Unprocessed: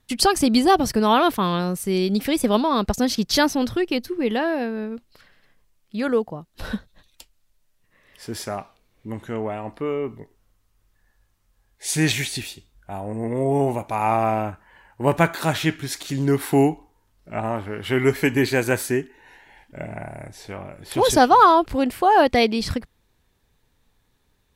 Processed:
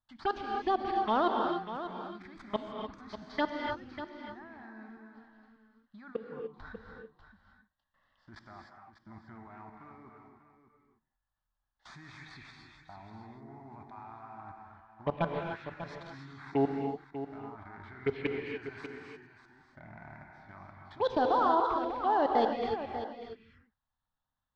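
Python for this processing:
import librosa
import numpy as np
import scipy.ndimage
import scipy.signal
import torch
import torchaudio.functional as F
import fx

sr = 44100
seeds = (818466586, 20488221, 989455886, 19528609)

y = fx.cvsd(x, sr, bps=64000)
y = scipy.signal.sosfilt(scipy.signal.butter(4, 3400.0, 'lowpass', fs=sr, output='sos'), y)
y = fx.low_shelf(y, sr, hz=480.0, db=-8.5)
y = fx.level_steps(y, sr, step_db=21)
y = fx.env_phaser(y, sr, low_hz=400.0, high_hz=2400.0, full_db=-20.5)
y = y + 10.0 ** (-11.0 / 20.0) * np.pad(y, (int(593 * sr / 1000.0), 0))[:len(y)]
y = fx.rev_gated(y, sr, seeds[0], gate_ms=320, shape='rising', drr_db=2.0)
y = F.gain(torch.from_numpy(y), -4.0).numpy()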